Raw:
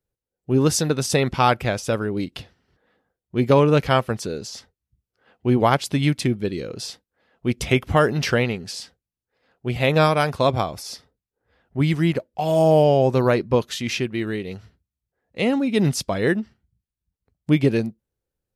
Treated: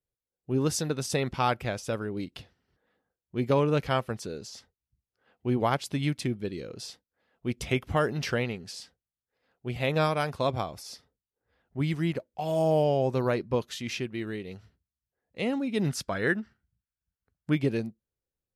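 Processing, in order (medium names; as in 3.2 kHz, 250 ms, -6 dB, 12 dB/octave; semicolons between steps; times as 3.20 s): 15.89–17.55 s: peaking EQ 1.5 kHz +11 dB 0.63 oct; trim -8.5 dB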